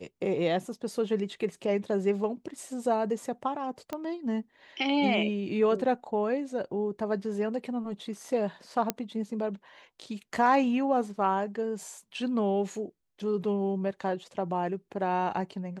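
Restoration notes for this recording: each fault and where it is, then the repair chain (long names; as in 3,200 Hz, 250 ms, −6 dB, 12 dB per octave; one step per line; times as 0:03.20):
0:03.93: click −20 dBFS
0:08.90: click −10 dBFS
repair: click removal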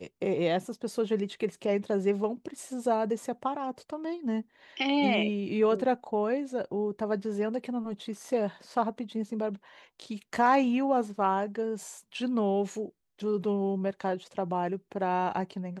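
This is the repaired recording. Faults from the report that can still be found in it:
none of them is left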